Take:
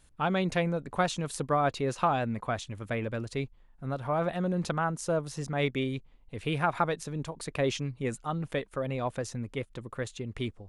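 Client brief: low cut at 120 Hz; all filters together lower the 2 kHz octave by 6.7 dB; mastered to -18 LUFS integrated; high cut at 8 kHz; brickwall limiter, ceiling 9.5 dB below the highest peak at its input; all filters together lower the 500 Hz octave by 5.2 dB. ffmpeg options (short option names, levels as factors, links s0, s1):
-af "highpass=120,lowpass=8000,equalizer=f=500:t=o:g=-6,equalizer=f=2000:t=o:g=-9,volume=9.44,alimiter=limit=0.447:level=0:latency=1"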